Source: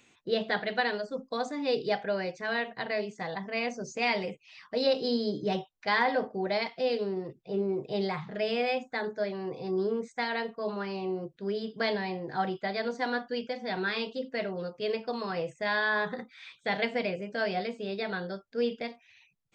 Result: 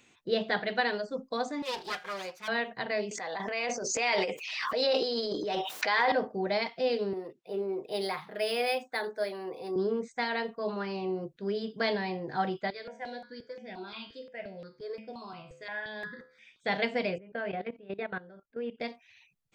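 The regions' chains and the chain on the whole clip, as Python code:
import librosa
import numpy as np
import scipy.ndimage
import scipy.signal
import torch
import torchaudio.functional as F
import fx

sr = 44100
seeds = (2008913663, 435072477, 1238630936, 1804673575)

y = fx.chain(x, sr, fx.lower_of_two(delay_ms=5.5),
    fx.highpass(hz=860.0, slope=6), at=(1.62, 2.48))
y = fx.chain(y, sr, fx.highpass(hz=440.0, slope=12),
    fx.transient(attack_db=-3, sustain_db=11),
    fx.pre_swell(db_per_s=33.0), at=(3.11, 6.12))
y = fx.chain(y, sr, fx.highpass(hz=350.0, slope=12),
    fx.dynamic_eq(hz=5000.0, q=1.4, threshold_db=-54.0, ratio=4.0, max_db=7),
    fx.resample_linear(factor=3), at=(7.13, 9.76))
y = fx.chain(y, sr, fx.comb_fb(f0_hz=73.0, decay_s=0.52, harmonics='all', damping=0.0, mix_pct=70),
    fx.phaser_held(hz=5.7, low_hz=210.0, high_hz=4200.0), at=(12.7, 16.6))
y = fx.chain(y, sr, fx.lowpass(hz=2700.0, slope=24),
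    fx.level_steps(step_db=17), at=(17.18, 18.8))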